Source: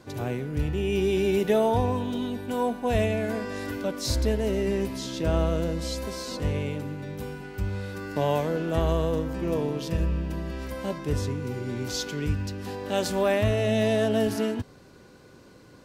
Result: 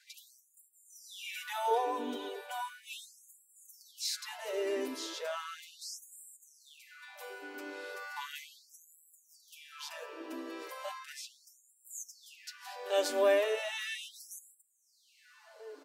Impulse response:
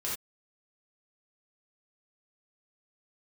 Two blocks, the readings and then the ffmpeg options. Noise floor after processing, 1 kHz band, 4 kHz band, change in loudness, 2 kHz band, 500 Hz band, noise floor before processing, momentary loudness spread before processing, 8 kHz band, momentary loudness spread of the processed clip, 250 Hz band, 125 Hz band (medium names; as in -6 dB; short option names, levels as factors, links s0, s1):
-69 dBFS, -6.0 dB, -5.5 dB, -9.5 dB, -6.0 dB, -10.0 dB, -52 dBFS, 10 LU, -4.5 dB, 22 LU, -19.0 dB, under -40 dB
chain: -filter_complex "[0:a]aecho=1:1:6.8:0.69,asplit=2[s0][s1];[s1]adelay=1458,volume=0.141,highshelf=f=4000:g=-32.8[s2];[s0][s2]amix=inputs=2:normalize=0,afftfilt=real='re*gte(b*sr/1024,250*pow(7300/250,0.5+0.5*sin(2*PI*0.36*pts/sr)))':imag='im*gte(b*sr/1024,250*pow(7300/250,0.5+0.5*sin(2*PI*0.36*pts/sr)))':win_size=1024:overlap=0.75,volume=0.531"